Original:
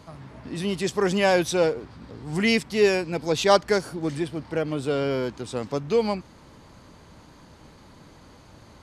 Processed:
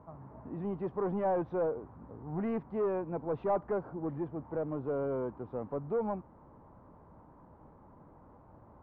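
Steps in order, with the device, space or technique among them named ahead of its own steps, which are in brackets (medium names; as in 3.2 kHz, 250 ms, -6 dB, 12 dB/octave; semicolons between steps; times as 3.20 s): overdriven synthesiser ladder filter (saturation -20.5 dBFS, distortion -10 dB; four-pole ladder low-pass 1.2 kHz, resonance 35%)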